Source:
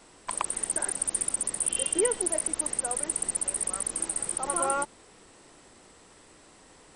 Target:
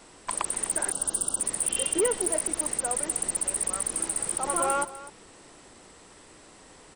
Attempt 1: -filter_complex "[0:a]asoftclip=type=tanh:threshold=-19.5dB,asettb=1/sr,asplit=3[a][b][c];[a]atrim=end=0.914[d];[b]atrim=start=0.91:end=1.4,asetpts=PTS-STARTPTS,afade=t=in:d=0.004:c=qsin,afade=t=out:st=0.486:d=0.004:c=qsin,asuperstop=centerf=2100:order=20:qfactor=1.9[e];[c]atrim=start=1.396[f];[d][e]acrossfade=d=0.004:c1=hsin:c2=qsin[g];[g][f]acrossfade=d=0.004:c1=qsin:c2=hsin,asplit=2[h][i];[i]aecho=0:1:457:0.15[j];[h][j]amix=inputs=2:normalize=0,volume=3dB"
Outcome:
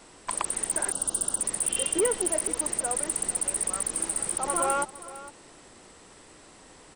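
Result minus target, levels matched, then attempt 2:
echo 0.206 s late
-filter_complex "[0:a]asoftclip=type=tanh:threshold=-19.5dB,asettb=1/sr,asplit=3[a][b][c];[a]atrim=end=0.914[d];[b]atrim=start=0.91:end=1.4,asetpts=PTS-STARTPTS,afade=t=in:d=0.004:c=qsin,afade=t=out:st=0.486:d=0.004:c=qsin,asuperstop=centerf=2100:order=20:qfactor=1.9[e];[c]atrim=start=1.396[f];[d][e]acrossfade=d=0.004:c1=hsin:c2=qsin[g];[g][f]acrossfade=d=0.004:c1=qsin:c2=hsin,asplit=2[h][i];[i]aecho=0:1:251:0.15[j];[h][j]amix=inputs=2:normalize=0,volume=3dB"

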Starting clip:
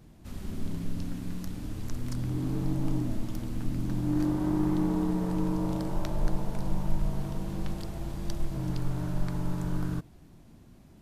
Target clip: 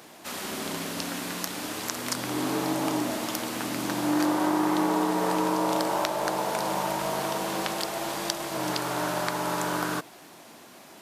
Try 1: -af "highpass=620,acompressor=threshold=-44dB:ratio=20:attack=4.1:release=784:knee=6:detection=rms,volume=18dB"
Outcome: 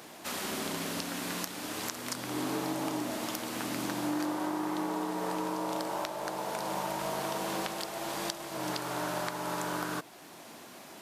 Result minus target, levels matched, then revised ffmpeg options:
compressor: peak gain reduction +9.5 dB
-af "highpass=620,acompressor=threshold=-34dB:ratio=20:attack=4.1:release=784:knee=6:detection=rms,volume=18dB"

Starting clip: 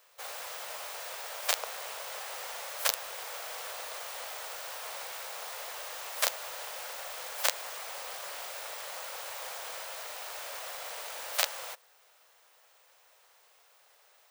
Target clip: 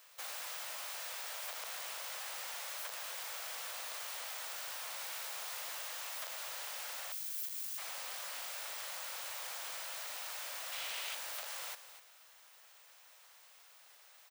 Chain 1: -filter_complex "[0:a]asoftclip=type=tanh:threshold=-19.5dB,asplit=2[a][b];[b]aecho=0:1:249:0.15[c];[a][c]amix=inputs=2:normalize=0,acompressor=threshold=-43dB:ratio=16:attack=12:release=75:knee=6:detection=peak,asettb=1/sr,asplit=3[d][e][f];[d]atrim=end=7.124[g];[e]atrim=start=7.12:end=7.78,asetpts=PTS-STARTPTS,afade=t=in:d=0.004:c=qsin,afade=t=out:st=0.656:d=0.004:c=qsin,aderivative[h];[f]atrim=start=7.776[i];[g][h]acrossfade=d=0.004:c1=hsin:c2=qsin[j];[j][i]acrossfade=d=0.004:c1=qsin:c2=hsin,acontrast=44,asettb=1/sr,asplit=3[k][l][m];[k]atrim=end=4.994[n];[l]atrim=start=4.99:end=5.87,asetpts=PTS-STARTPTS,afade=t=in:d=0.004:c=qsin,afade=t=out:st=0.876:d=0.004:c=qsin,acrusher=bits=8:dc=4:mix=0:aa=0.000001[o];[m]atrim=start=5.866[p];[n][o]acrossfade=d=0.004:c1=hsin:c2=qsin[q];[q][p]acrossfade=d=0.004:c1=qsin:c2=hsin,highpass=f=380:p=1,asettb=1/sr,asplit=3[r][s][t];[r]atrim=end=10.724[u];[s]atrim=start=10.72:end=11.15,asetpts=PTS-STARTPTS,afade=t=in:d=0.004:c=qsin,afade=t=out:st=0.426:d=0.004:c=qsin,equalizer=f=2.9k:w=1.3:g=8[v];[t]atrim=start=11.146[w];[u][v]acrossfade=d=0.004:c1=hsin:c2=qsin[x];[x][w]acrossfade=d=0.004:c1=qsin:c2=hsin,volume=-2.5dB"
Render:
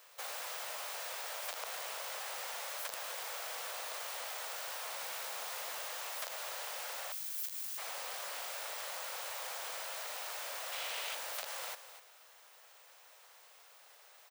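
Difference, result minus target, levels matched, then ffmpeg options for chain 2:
500 Hz band +5.5 dB; soft clip: distortion -4 dB
-filter_complex "[0:a]asoftclip=type=tanh:threshold=-29dB,asplit=2[a][b];[b]aecho=0:1:249:0.15[c];[a][c]amix=inputs=2:normalize=0,acompressor=threshold=-43dB:ratio=16:attack=12:release=75:knee=6:detection=peak,asettb=1/sr,asplit=3[d][e][f];[d]atrim=end=7.124[g];[e]atrim=start=7.12:end=7.78,asetpts=PTS-STARTPTS,afade=t=in:d=0.004:c=qsin,afade=t=out:st=0.656:d=0.004:c=qsin,aderivative[h];[f]atrim=start=7.776[i];[g][h]acrossfade=d=0.004:c1=hsin:c2=qsin[j];[j][i]acrossfade=d=0.004:c1=qsin:c2=hsin,acontrast=44,asettb=1/sr,asplit=3[k][l][m];[k]atrim=end=4.994[n];[l]atrim=start=4.99:end=5.87,asetpts=PTS-STARTPTS,afade=t=in:d=0.004:c=qsin,afade=t=out:st=0.876:d=0.004:c=qsin,acrusher=bits=8:dc=4:mix=0:aa=0.000001[o];[m]atrim=start=5.866[p];[n][o]acrossfade=d=0.004:c1=hsin:c2=qsin[q];[q][p]acrossfade=d=0.004:c1=qsin:c2=hsin,highpass=f=1.3k:p=1,asettb=1/sr,asplit=3[r][s][t];[r]atrim=end=10.724[u];[s]atrim=start=10.72:end=11.15,asetpts=PTS-STARTPTS,afade=t=in:d=0.004:c=qsin,afade=t=out:st=0.426:d=0.004:c=qsin,equalizer=f=2.9k:w=1.3:g=8[v];[t]atrim=start=11.146[w];[u][v]acrossfade=d=0.004:c1=hsin:c2=qsin[x];[x][w]acrossfade=d=0.004:c1=qsin:c2=hsin,volume=-2.5dB"

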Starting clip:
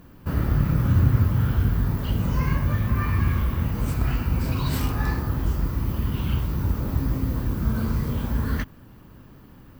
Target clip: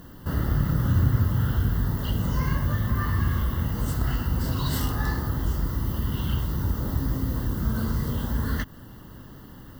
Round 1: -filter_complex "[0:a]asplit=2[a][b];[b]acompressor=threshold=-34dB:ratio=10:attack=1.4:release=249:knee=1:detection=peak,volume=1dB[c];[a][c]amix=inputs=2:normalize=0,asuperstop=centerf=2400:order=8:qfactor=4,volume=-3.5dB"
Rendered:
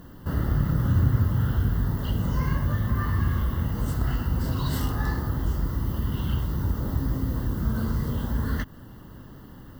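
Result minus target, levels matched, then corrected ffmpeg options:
4000 Hz band -3.0 dB
-filter_complex "[0:a]asplit=2[a][b];[b]acompressor=threshold=-34dB:ratio=10:attack=1.4:release=249:knee=1:detection=peak,volume=1dB[c];[a][c]amix=inputs=2:normalize=0,asuperstop=centerf=2400:order=8:qfactor=4,highshelf=f=2.1k:g=4.5,volume=-3.5dB"

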